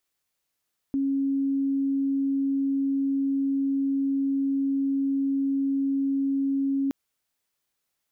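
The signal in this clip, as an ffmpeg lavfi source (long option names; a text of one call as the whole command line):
ffmpeg -f lavfi -i "sine=frequency=274:duration=5.97:sample_rate=44100,volume=-3.94dB" out.wav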